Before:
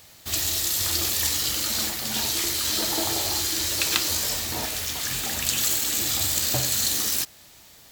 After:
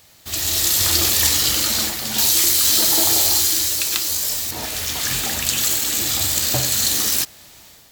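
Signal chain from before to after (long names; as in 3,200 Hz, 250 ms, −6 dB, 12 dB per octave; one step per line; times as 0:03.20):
0:02.18–0:04.51: high-shelf EQ 4,800 Hz +10 dB
automatic gain control
level −1 dB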